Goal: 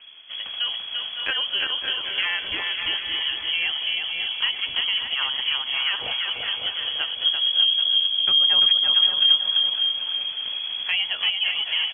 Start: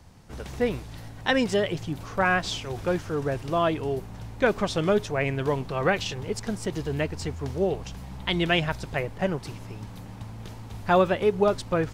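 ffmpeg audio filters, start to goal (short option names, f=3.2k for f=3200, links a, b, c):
-filter_complex "[0:a]asettb=1/sr,asplit=3[a][b][c];[a]atrim=end=7.244[d];[b]atrim=start=7.24:end=9.57,asetpts=PTS-STARTPTS,afade=t=in:d=0.004:c=qsin,afade=t=out:st=2.326:d=0.004:c=qsin,lowshelf=f=280:t=q:w=3:g=13.5[e];[c]atrim=start=9.566[f];[d][e]acrossfade=d=0.004:c1=hsin:c2=qsin[g];[g][f]acrossfade=d=0.004:c1=qsin:c2=hsin,lowpass=f=2.9k:t=q:w=0.5098,lowpass=f=2.9k:t=q:w=0.6013,lowpass=f=2.9k:t=q:w=0.9,lowpass=f=2.9k:t=q:w=2.563,afreqshift=-3400,asplit=2[h][i];[i]adelay=552,lowpass=f=1.6k:p=1,volume=-10dB,asplit=2[j][k];[k]adelay=552,lowpass=f=1.6k:p=1,volume=0.37,asplit=2[l][m];[m]adelay=552,lowpass=f=1.6k:p=1,volume=0.37,asplit=2[n][o];[o]adelay=552,lowpass=f=1.6k:p=1,volume=0.37[p];[h][j][l][n][p]amix=inputs=5:normalize=0,acompressor=threshold=-35dB:ratio=2,aecho=1:1:340|595|786.2|929.7|1037:0.631|0.398|0.251|0.158|0.1,volume=5.5dB"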